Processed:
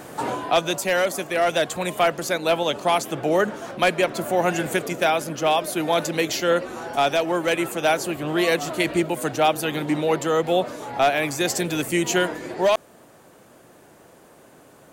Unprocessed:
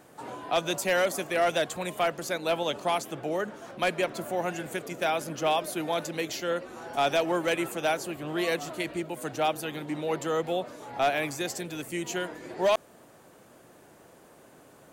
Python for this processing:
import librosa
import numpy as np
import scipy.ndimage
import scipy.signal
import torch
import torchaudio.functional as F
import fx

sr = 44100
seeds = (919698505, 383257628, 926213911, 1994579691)

y = fx.rider(x, sr, range_db=10, speed_s=0.5)
y = F.gain(torch.from_numpy(y), 7.0).numpy()